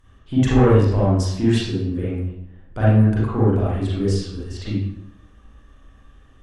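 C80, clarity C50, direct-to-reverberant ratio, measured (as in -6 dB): 2.5 dB, -3.5 dB, -9.0 dB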